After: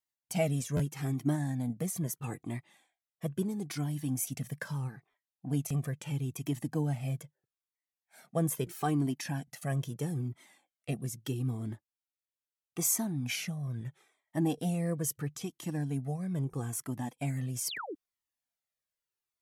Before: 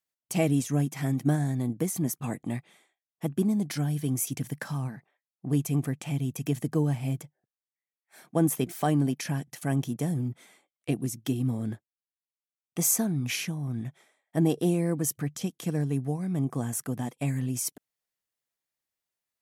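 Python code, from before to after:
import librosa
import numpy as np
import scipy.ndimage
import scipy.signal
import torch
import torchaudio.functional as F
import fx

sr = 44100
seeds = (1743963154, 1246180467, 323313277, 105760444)

y = fx.spec_paint(x, sr, seeds[0], shape='fall', start_s=17.65, length_s=0.3, low_hz=260.0, high_hz=7000.0, level_db=-35.0)
y = fx.buffer_glitch(y, sr, at_s=(0.76, 5.1, 5.67, 16.5), block=512, repeats=2)
y = fx.comb_cascade(y, sr, direction='falling', hz=0.77)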